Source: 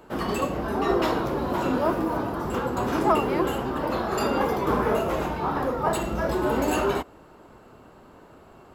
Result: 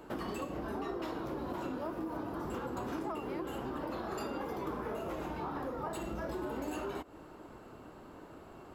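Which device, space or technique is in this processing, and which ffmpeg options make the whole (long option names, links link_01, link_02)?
serial compression, peaks first: -af "equalizer=frequency=310:width_type=o:width=0.29:gain=5.5,acompressor=threshold=-30dB:ratio=6,acompressor=threshold=-38dB:ratio=1.5,volume=-2.5dB"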